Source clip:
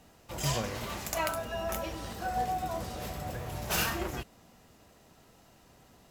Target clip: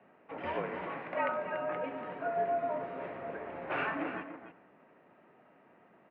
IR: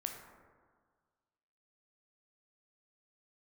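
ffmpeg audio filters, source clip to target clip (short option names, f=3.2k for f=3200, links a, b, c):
-filter_complex "[0:a]aecho=1:1:286:0.316,asplit=2[a][b];[1:a]atrim=start_sample=2205,adelay=97[c];[b][c]afir=irnorm=-1:irlink=0,volume=-17.5dB[d];[a][d]amix=inputs=2:normalize=0,highpass=f=260:t=q:w=0.5412,highpass=f=260:t=q:w=1.307,lowpass=f=2.4k:t=q:w=0.5176,lowpass=f=2.4k:t=q:w=0.7071,lowpass=f=2.4k:t=q:w=1.932,afreqshift=-54"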